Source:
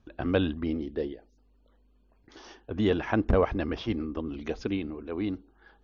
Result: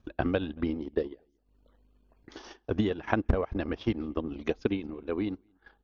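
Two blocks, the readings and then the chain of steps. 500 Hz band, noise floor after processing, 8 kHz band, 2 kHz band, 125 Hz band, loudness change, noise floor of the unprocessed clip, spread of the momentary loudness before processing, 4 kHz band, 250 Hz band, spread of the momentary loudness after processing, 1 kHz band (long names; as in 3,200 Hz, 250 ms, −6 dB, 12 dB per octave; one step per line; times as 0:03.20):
−2.0 dB, −71 dBFS, can't be measured, −1.0 dB, −1.5 dB, −2.0 dB, −64 dBFS, 11 LU, −3.5 dB, −1.5 dB, 13 LU, −1.0 dB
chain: downward compressor 2.5 to 1, threshold −29 dBFS, peak gain reduction 7.5 dB
slap from a distant wall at 39 metres, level −23 dB
transient designer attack +7 dB, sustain −12 dB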